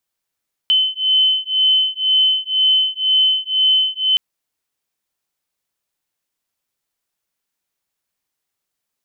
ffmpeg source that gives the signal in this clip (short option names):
-f lavfi -i "aevalsrc='0.158*(sin(2*PI*3050*t)+sin(2*PI*3052*t))':d=3.47:s=44100"